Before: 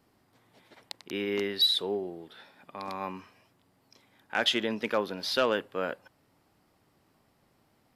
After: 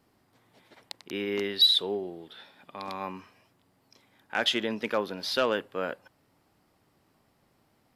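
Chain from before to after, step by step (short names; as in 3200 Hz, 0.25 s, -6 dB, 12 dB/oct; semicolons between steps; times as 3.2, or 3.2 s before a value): 1.44–3.03 bell 3400 Hz +5.5 dB 0.6 oct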